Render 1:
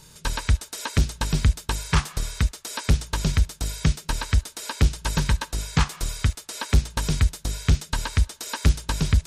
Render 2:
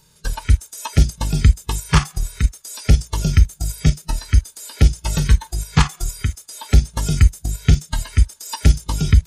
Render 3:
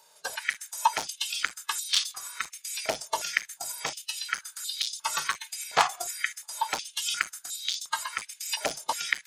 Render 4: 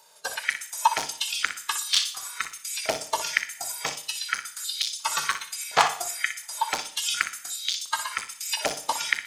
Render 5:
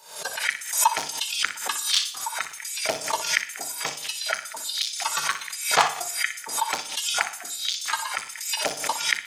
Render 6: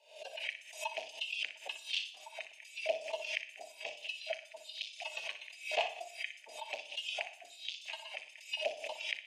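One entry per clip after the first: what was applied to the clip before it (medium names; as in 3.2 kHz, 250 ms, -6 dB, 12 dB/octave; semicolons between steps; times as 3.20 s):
spectral noise reduction 15 dB; harmonic-percussive split harmonic +7 dB; in parallel at +3 dB: level held to a coarse grid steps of 16 dB; on the sum: trim -1 dB
overload inside the chain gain 9.5 dB; step-sequenced high-pass 2.8 Hz 680–3800 Hz; trim -3 dB
on a send: flutter echo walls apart 10.4 m, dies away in 0.32 s; on the sum: Schroeder reverb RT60 0.74 s, combs from 27 ms, DRR 14.5 dB; trim +2.5 dB
high-pass 76 Hz; repeats whose band climbs or falls 704 ms, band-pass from 290 Hz, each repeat 1.4 oct, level -9 dB; swell ahead of each attack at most 100 dB/s
two resonant band-passes 1.3 kHz, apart 2.1 oct; trim -2.5 dB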